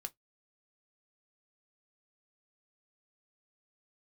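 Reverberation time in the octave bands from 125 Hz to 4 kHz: 0.20, 0.15, 0.15, 0.10, 0.10, 0.10 seconds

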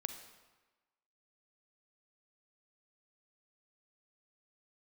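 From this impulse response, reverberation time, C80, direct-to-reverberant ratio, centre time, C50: 1.2 s, 10.5 dB, 8.0 dB, 18 ms, 8.5 dB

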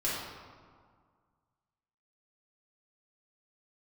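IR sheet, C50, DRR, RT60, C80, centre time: −1.0 dB, −8.5 dB, 1.9 s, 1.5 dB, 96 ms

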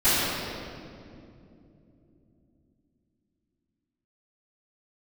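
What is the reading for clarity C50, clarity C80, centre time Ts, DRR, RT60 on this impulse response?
−4.5 dB, −2.5 dB, 180 ms, −21.0 dB, 2.8 s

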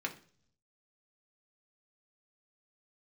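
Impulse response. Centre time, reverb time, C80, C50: 9 ms, 0.50 s, 19.0 dB, 14.0 dB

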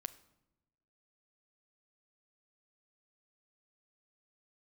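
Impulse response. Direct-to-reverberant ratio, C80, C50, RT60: 11.5 dB, 19.0 dB, 17.0 dB, 0.95 s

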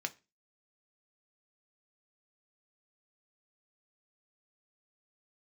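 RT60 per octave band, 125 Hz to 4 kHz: 0.35, 0.35, 0.30, 0.25, 0.30, 0.30 seconds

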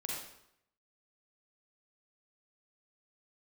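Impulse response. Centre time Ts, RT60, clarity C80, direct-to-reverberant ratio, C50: 64 ms, 0.75 s, 3.0 dB, −3.5 dB, −1.0 dB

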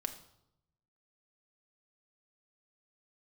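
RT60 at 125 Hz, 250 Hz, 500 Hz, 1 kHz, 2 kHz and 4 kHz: 1.3, 0.95, 0.85, 0.80, 0.60, 0.65 seconds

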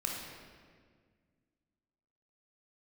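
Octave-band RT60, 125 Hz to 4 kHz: 2.5, 2.5, 1.9, 1.6, 1.6, 1.3 seconds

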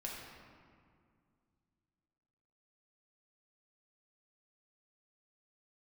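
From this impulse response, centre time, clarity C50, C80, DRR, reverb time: 95 ms, 0.5 dB, 2.0 dB, −3.5 dB, 2.2 s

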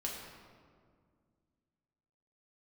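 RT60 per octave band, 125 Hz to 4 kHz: 2.8, 2.8, 2.2, 1.8, 1.4, 1.1 seconds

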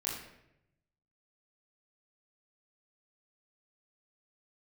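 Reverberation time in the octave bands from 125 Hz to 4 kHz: 1.4, 0.95, 0.95, 0.70, 0.80, 0.60 seconds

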